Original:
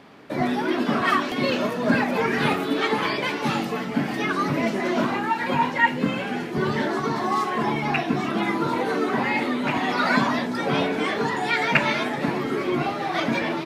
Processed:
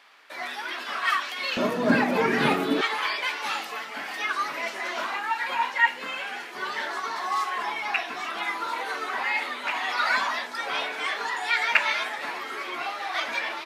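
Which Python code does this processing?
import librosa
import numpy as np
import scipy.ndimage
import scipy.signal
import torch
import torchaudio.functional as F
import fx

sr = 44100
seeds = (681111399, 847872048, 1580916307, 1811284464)

y = fx.highpass(x, sr, hz=fx.steps((0.0, 1300.0), (1.57, 160.0), (2.81, 1000.0)), slope=12)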